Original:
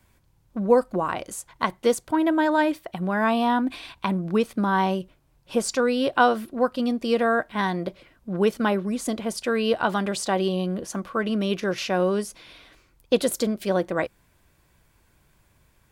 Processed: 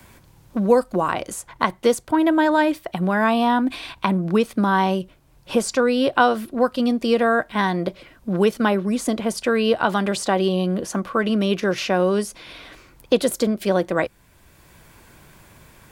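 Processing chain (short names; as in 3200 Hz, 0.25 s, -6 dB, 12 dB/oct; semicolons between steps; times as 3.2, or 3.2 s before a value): three-band squash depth 40%; gain +3.5 dB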